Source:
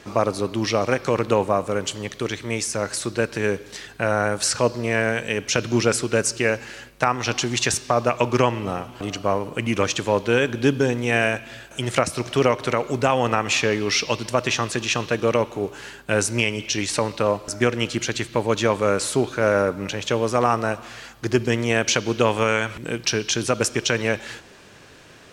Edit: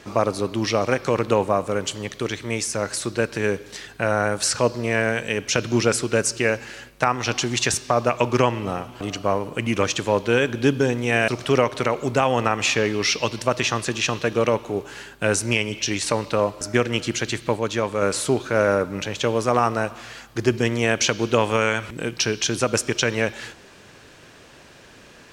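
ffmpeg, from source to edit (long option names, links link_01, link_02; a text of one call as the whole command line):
ffmpeg -i in.wav -filter_complex "[0:a]asplit=4[link_01][link_02][link_03][link_04];[link_01]atrim=end=11.282[link_05];[link_02]atrim=start=12.148:end=18.442[link_06];[link_03]atrim=start=18.438:end=18.892,asetpts=PTS-STARTPTS,volume=-3.5dB[link_07];[link_04]atrim=start=18.888[link_08];[link_05][link_06]acrossfade=duration=0.004:curve1=hsin:curve2=hsin[link_09];[link_09][link_07]acrossfade=duration=0.004:curve1=hsin:curve2=hsin[link_10];[link_10][link_08]acrossfade=duration=0.004:curve1=hsin:curve2=hsin" out.wav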